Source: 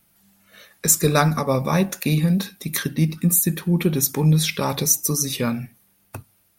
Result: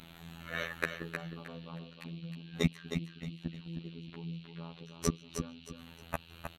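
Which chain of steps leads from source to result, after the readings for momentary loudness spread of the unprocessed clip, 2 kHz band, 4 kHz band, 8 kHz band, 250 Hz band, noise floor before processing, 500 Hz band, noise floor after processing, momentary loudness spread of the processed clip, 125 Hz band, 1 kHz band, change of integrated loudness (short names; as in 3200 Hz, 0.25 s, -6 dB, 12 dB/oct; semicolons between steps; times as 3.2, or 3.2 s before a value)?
7 LU, -10.5 dB, -16.5 dB, -26.5 dB, -17.5 dB, -62 dBFS, -17.5 dB, -55 dBFS, 13 LU, -19.0 dB, -19.0 dB, -20.0 dB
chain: Wiener smoothing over 9 samples; treble ducked by the level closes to 850 Hz, closed at -16 dBFS; in parallel at -1 dB: compressor, threshold -26 dBFS, peak gain reduction 13 dB; on the sum: flipped gate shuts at -23 dBFS, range -37 dB; band noise 2300–4100 Hz -69 dBFS; robotiser 83.6 Hz; on a send: feedback echo 0.312 s, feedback 28%, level -6.5 dB; on the sum: gain +10.5 dB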